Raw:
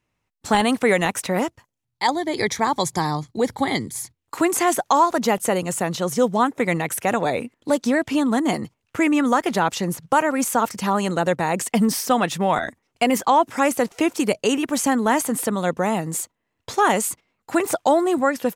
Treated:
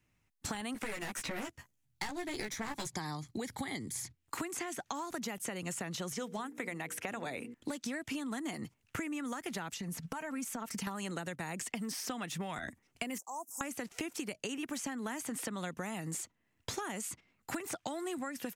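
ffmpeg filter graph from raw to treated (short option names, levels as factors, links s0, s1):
-filter_complex "[0:a]asettb=1/sr,asplit=3[s0][s1][s2];[s0]atrim=end=0.744[s3];[s1]atrim=start=0.74:end=2.87,asetpts=PTS-STARTPTS,afade=t=in:d=0.004:c=qsin,afade=t=out:st=2.126:d=0.004:c=qsin,asplit=2[s4][s5];[s5]adelay=14,volume=0.708[s6];[s4][s6]amix=inputs=2:normalize=0,atrim=end_sample=93933,aeval=exprs='clip(val(0),-1,0.0501)':c=same[s7];[s2]atrim=start=2.866[s8];[s3][s7]acrossfade=d=0.004:c1=hsin:c2=qsin[s9];[s9][s8]acrossfade=d=0.004:c1=qsin:c2=hsin,asettb=1/sr,asplit=3[s10][s11][s12];[s10]atrim=end=6.124[s13];[s11]atrim=start=6.12:end=7.54,asetpts=PTS-STARTPTS,afade=t=in:d=0.004:c=qsin,afade=t=out:st=1.416:d=0.004:c=qsin,bass=f=250:g=-9,treble=f=4000:g=-3,bandreject=f=60:t=h:w=6,bandreject=f=120:t=h:w=6,bandreject=f=180:t=h:w=6,bandreject=f=240:t=h:w=6,bandreject=f=300:t=h:w=6,bandreject=f=360:t=h:w=6,bandreject=f=420:t=h:w=6,bandreject=f=480:t=h:w=6[s14];[s12]atrim=start=7.536[s15];[s13][s14]acrossfade=d=0.004:c1=hsin:c2=qsin[s16];[s16][s15]acrossfade=d=0.004:c1=qsin:c2=hsin,asettb=1/sr,asplit=3[s17][s18][s19];[s17]atrim=end=9.764[s20];[s18]atrim=start=9.76:end=10.87,asetpts=PTS-STARTPTS,afade=t=in:d=0.004:c=qsin,afade=t=out:st=1.106:d=0.004:c=qsin,acompressor=threshold=0.0224:ratio=5:attack=3.2:release=140:knee=1:detection=peak,aecho=1:1:4.5:0.54,atrim=end_sample=48951[s21];[s19]atrim=start=10.866[s22];[s20][s21]acrossfade=d=0.004:c1=hsin:c2=qsin[s23];[s23][s22]acrossfade=d=0.004:c1=qsin:c2=hsin,asettb=1/sr,asplit=3[s24][s25][s26];[s24]atrim=end=13.184[s27];[s25]atrim=start=13.18:end=13.61,asetpts=PTS-STARTPTS,afade=t=in:d=0.004:c=qsin,afade=t=out:st=0.426:d=0.004:c=qsin,asuperstop=centerf=2500:order=12:qfactor=0.53,aderivative[s28];[s26]atrim=start=13.606[s29];[s27][s28]acrossfade=d=0.004:c1=hsin:c2=qsin[s30];[s30][s29]acrossfade=d=0.004:c1=qsin:c2=hsin,acrossover=split=320|1300|6600[s31][s32][s33][s34];[s31]acompressor=threshold=0.0158:ratio=4[s35];[s32]acompressor=threshold=0.0355:ratio=4[s36];[s33]acompressor=threshold=0.0251:ratio=4[s37];[s34]acompressor=threshold=0.00708:ratio=4[s38];[s35][s36][s37][s38]amix=inputs=4:normalize=0,equalizer=f=500:t=o:w=1:g=-7,equalizer=f=1000:t=o:w=1:g=-6,equalizer=f=4000:t=o:w=1:g=-4,acompressor=threshold=0.0141:ratio=10,volume=1.19"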